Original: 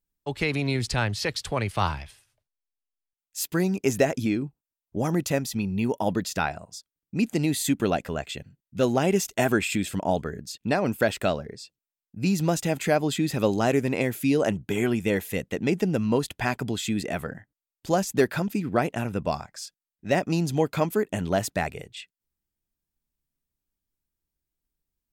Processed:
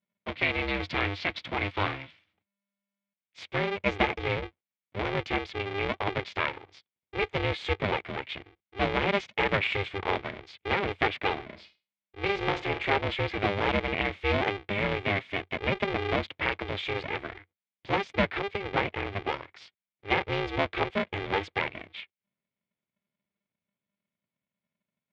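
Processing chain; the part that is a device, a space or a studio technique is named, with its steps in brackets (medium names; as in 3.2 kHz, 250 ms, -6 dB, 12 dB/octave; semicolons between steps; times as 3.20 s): 11.42–12.92 s: flutter echo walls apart 8.4 m, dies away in 0.29 s; ring modulator pedal into a guitar cabinet (polarity switched at an audio rate 200 Hz; cabinet simulation 81–3700 Hz, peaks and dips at 91 Hz +5 dB, 270 Hz -4 dB, 2.2 kHz +10 dB, 3.4 kHz +5 dB); trim -4.5 dB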